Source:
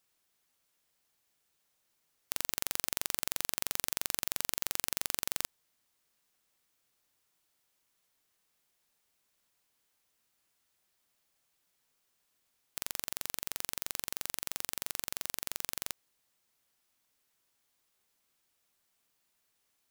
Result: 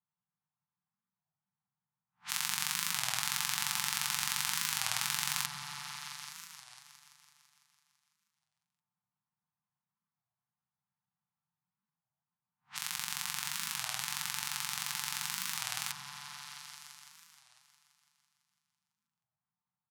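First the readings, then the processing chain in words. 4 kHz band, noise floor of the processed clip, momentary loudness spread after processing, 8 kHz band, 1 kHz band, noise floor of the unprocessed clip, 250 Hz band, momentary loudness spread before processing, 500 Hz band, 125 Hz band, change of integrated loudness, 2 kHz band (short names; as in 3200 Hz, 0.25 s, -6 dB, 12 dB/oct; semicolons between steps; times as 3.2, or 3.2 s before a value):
+5.5 dB, under -85 dBFS, 15 LU, +3.0 dB, +6.0 dB, -78 dBFS, -2.5 dB, 6 LU, -12.5 dB, +4.5 dB, +1.0 dB, +6.0 dB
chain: spectral swells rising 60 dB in 0.31 s; weighting filter A; low-pass opened by the level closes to 480 Hz, open at -38.5 dBFS; inverse Chebyshev band-stop 290–600 Hz, stop band 40 dB; low shelf 430 Hz +9.5 dB; comb 6.7 ms, depth 51%; on a send: repeats that get brighter 0.167 s, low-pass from 400 Hz, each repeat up 1 oct, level 0 dB; on the sum: record warp 33 1/3 rpm, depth 250 cents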